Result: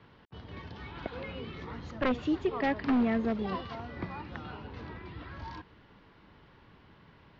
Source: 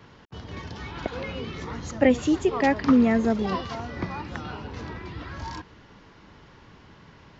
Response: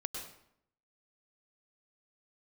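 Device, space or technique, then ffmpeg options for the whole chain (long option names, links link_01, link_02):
synthesiser wavefolder: -af "aeval=exprs='0.2*(abs(mod(val(0)/0.2+3,4)-2)-1)':channel_layout=same,lowpass=frequency=4300:width=0.5412,lowpass=frequency=4300:width=1.3066,volume=-7dB"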